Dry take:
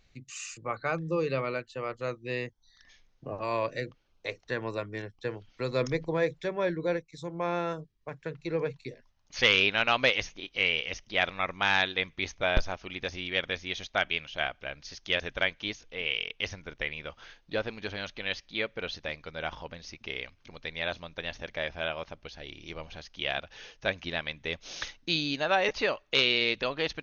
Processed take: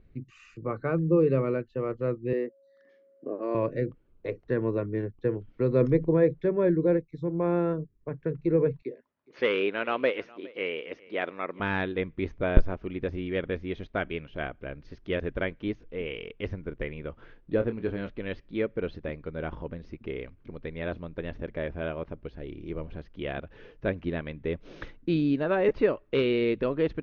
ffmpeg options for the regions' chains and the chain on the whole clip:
ffmpeg -i in.wav -filter_complex "[0:a]asettb=1/sr,asplit=3[link_01][link_02][link_03];[link_01]atrim=end=2.334[link_04];[link_02]atrim=start=2.33:end=3.55,asetpts=PTS-STARTPTS,afade=type=in:duration=0.004:curve=qsin,afade=type=out:start_time=1.216:duration=0.004:curve=qsin,aeval=exprs='val(0)+0.000891*sin(2*PI*550*n/s)':channel_layout=same,highpass=frequency=260:width=0.5412,highpass=frequency=260:width=1.3066,equalizer=frequency=950:width_type=q:width=4:gain=-7,equalizer=frequency=2500:width_type=q:width=4:gain=-7,equalizer=frequency=3600:width_type=q:width=4:gain=-5,lowpass=frequency=6700:width=0.5412,lowpass=frequency=6700:width=1.3066[link_05];[link_03]atrim=start=3.546[link_06];[link_04][link_05]acrossfade=duration=0.004:curve1=hsin:curve2=qsin[link_07];[link_07][link_06]acrossfade=duration=0.004:curve1=qsin:curve2=hsin,asettb=1/sr,asplit=3[link_08][link_09][link_10];[link_08]atrim=end=8.824[link_11];[link_09]atrim=start=8.82:end=11.6,asetpts=PTS-STARTPTS,afade=type=in:duration=0.004:curve=qsin,afade=type=out:start_time=2.776:duration=0.004:curve=qsin,highpass=350,lowpass=7000,aecho=1:1:413:0.0708,atrim=end_sample=122598[link_12];[link_10]atrim=start=11.596[link_13];[link_11][link_12]acrossfade=duration=0.004:curve1=hsin:curve2=qsin[link_14];[link_14][link_13]acrossfade=duration=0.004:curve1=qsin:curve2=hsin,asettb=1/sr,asplit=3[link_15][link_16][link_17];[link_15]atrim=end=17.574[link_18];[link_16]atrim=start=17.57:end=18.09,asetpts=PTS-STARTPTS,afade=type=in:duration=0.004:curve=qsin,afade=type=out:start_time=0.516:duration=0.004:curve=qsin,adynamicsmooth=sensitivity=6:basefreq=6800,asplit=2[link_19][link_20];[link_20]adelay=26,volume=-9dB[link_21];[link_19][link_21]amix=inputs=2:normalize=0,atrim=end_sample=22932[link_22];[link_17]atrim=start=18.086[link_23];[link_18][link_22]acrossfade=duration=0.004:curve1=hsin:curve2=qsin[link_24];[link_24][link_23]acrossfade=duration=0.004:curve1=qsin:curve2=hsin,lowpass=1500,lowshelf=frequency=530:width_type=q:width=1.5:gain=8,bandreject=frequency=790:width=12" out.wav

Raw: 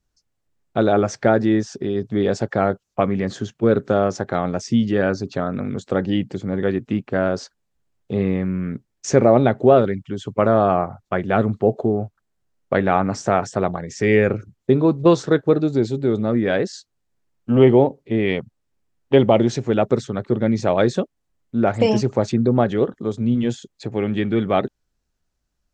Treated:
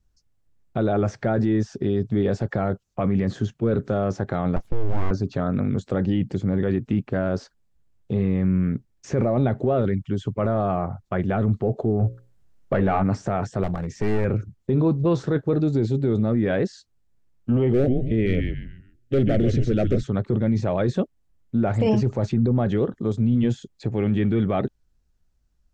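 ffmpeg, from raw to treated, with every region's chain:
ffmpeg -i in.wav -filter_complex "[0:a]asettb=1/sr,asplit=3[link_01][link_02][link_03];[link_01]atrim=end=4.564[link_04];[link_02]atrim=start=4.56:end=5.11,asetpts=PTS-STARTPTS,afade=type=in:duration=0.004:curve=qsin,afade=type=out:start_time=0.546:duration=0.004:curve=qsin,lowpass=1100,aeval=exprs='abs(val(0))':channel_layout=same[link_05];[link_03]atrim=start=5.106[link_06];[link_04][link_05]acrossfade=duration=0.004:curve1=hsin:curve2=qsin[link_07];[link_07][link_06]acrossfade=duration=0.004:curve1=qsin:curve2=hsin,asettb=1/sr,asplit=3[link_08][link_09][link_10];[link_08]atrim=end=11.994[link_11];[link_09]atrim=start=11.99:end=13.04,asetpts=PTS-STARTPTS,afade=type=in:duration=0.004:curve=qsin,afade=type=out:start_time=1.046:duration=0.004:curve=qsin,acontrast=67,bandreject=frequency=60:width_type=h:width=6,bandreject=frequency=120:width_type=h:width=6,bandreject=frequency=180:width_type=h:width=6,bandreject=frequency=240:width_type=h:width=6,bandreject=frequency=300:width_type=h:width=6,bandreject=frequency=360:width_type=h:width=6,bandreject=frequency=420:width_type=h:width=6,bandreject=frequency=480:width_type=h:width=6,bandreject=frequency=540:width_type=h:width=6[link_12];[link_10]atrim=start=13.036[link_13];[link_11][link_12]acrossfade=duration=0.004:curve1=hsin:curve2=qsin[link_14];[link_14][link_13]acrossfade=duration=0.004:curve1=qsin:curve2=hsin,asettb=1/sr,asplit=3[link_15][link_16][link_17];[link_15]atrim=end=13.634[link_18];[link_16]atrim=start=13.63:end=14.25,asetpts=PTS-STARTPTS,afade=type=in:duration=0.004:curve=qsin,afade=type=out:start_time=0.616:duration=0.004:curve=qsin,acompressor=threshold=-22dB:ratio=1.5:attack=3.2:release=140:knee=1:detection=peak,aeval=exprs='clip(val(0),-1,0.0422)':channel_layout=same[link_19];[link_17]atrim=start=14.246[link_20];[link_18][link_19]acrossfade=duration=0.004:curve1=hsin:curve2=qsin[link_21];[link_21][link_20]acrossfade=duration=0.004:curve1=qsin:curve2=hsin,asettb=1/sr,asplit=3[link_22][link_23][link_24];[link_22]atrim=end=17.734[link_25];[link_23]atrim=start=17.73:end=20.03,asetpts=PTS-STARTPTS,afade=type=in:duration=0.004:curve=qsin,afade=type=out:start_time=2.296:duration=0.004:curve=qsin,asplit=5[link_26][link_27][link_28][link_29][link_30];[link_27]adelay=138,afreqshift=-120,volume=-9dB[link_31];[link_28]adelay=276,afreqshift=-240,volume=-18.4dB[link_32];[link_29]adelay=414,afreqshift=-360,volume=-27.7dB[link_33];[link_30]adelay=552,afreqshift=-480,volume=-37.1dB[link_34];[link_26][link_31][link_32][link_33][link_34]amix=inputs=5:normalize=0,atrim=end_sample=101430,asoftclip=type=hard:threshold=-10.5dB,asuperstop=centerf=960:order=4:qfactor=1.2[link_35];[link_24]atrim=start=20.026[link_36];[link_25][link_35]acrossfade=duration=0.004:curve1=hsin:curve2=qsin[link_37];[link_37][link_36]acrossfade=duration=0.004:curve1=qsin:curve2=hsin,acrossover=split=3200[link_38][link_39];[link_39]acompressor=threshold=-43dB:ratio=4:attack=1:release=60[link_40];[link_38][link_40]amix=inputs=2:normalize=0,lowshelf=frequency=170:gain=12,alimiter=limit=-10.5dB:level=0:latency=1:release=10,volume=-2.5dB" out.wav

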